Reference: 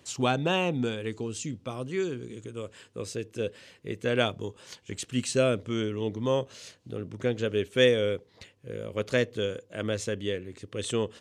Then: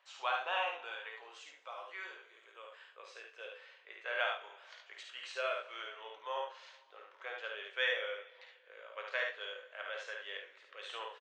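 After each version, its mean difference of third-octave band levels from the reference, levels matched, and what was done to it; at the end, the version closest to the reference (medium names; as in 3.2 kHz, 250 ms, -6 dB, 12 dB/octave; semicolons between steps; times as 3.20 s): 13.0 dB: Bessel high-pass 1.2 kHz, order 6; tape spacing loss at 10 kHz 42 dB; early reflections 52 ms -6 dB, 72 ms -4.5 dB; two-slope reverb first 0.31 s, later 1.9 s, from -18 dB, DRR 5 dB; trim +3 dB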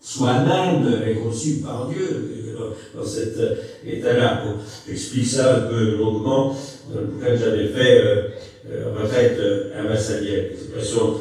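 6.0 dB: phase randomisation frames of 100 ms; peaking EQ 2.5 kHz -13.5 dB 0.34 oct; FDN reverb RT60 0.62 s, low-frequency decay 1.2×, high-frequency decay 0.9×, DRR -8 dB; modulated delay 241 ms, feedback 36%, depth 124 cents, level -23 dB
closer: second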